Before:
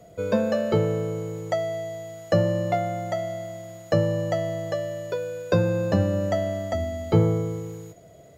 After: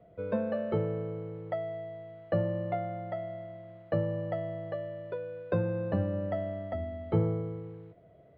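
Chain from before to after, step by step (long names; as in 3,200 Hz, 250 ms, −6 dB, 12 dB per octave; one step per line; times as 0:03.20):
Bessel low-pass filter 2,000 Hz, order 8
level −8 dB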